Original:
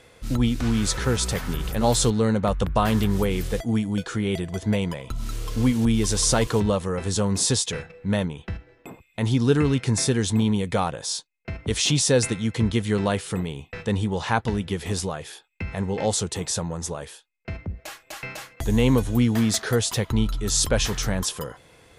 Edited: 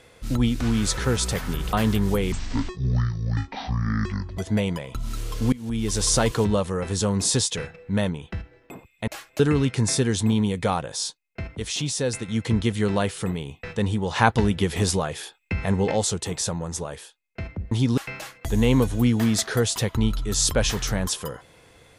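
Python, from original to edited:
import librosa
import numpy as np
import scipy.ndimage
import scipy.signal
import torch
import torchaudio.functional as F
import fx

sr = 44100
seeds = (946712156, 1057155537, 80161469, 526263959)

y = fx.edit(x, sr, fx.cut(start_s=1.73, length_s=1.08),
    fx.speed_span(start_s=3.4, length_s=1.13, speed=0.55),
    fx.fade_in_from(start_s=5.68, length_s=0.51, floor_db=-23.0),
    fx.swap(start_s=9.23, length_s=0.26, other_s=17.81, other_length_s=0.32),
    fx.clip_gain(start_s=11.65, length_s=0.73, db=-6.0),
    fx.clip_gain(start_s=14.25, length_s=1.76, db=4.5), tone=tone)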